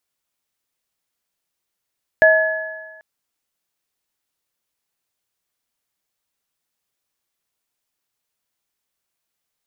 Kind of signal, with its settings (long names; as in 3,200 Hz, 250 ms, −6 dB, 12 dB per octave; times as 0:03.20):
inharmonic partials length 0.79 s, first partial 637 Hz, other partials 888/1,700 Hz, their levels −19.5/−0.5 dB, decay 1.26 s, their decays 1.56/1.40 s, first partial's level −9 dB